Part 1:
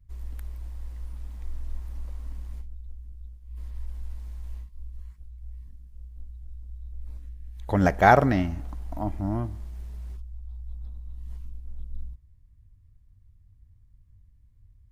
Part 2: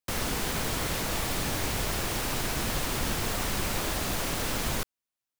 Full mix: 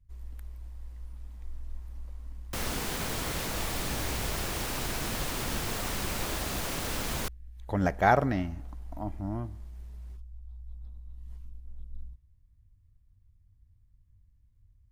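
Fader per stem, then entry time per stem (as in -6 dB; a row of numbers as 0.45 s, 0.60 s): -6.0 dB, -3.0 dB; 0.00 s, 2.45 s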